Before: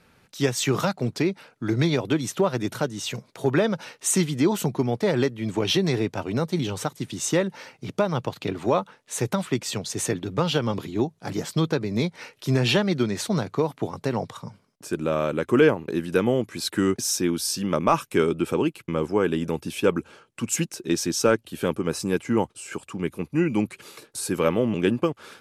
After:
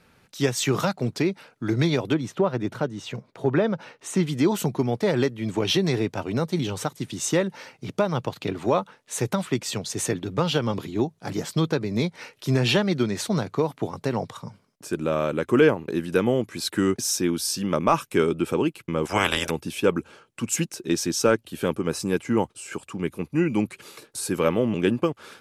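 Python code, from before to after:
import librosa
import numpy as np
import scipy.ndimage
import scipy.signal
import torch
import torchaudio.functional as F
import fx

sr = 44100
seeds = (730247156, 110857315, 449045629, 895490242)

y = fx.lowpass(x, sr, hz=1800.0, slope=6, at=(2.14, 4.27))
y = fx.spec_clip(y, sr, under_db=30, at=(19.05, 19.49), fade=0.02)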